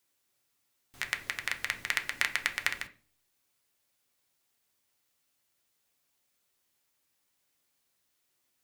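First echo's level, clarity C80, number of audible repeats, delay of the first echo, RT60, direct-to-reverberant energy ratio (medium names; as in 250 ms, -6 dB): no echo, 20.0 dB, no echo, no echo, 0.40 s, 4.0 dB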